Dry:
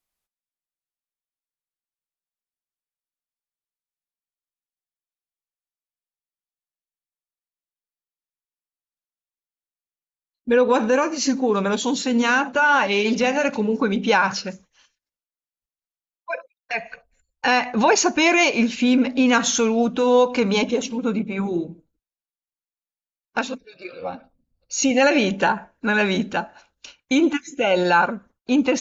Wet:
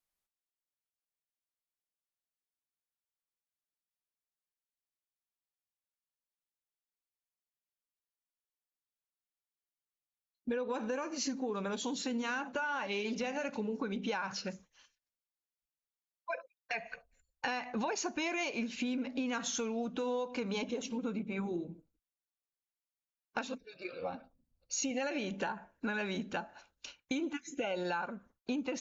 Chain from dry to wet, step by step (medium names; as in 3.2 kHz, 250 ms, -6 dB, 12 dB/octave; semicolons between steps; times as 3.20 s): compression 6:1, threshold -27 dBFS, peak gain reduction 14 dB; trim -6.5 dB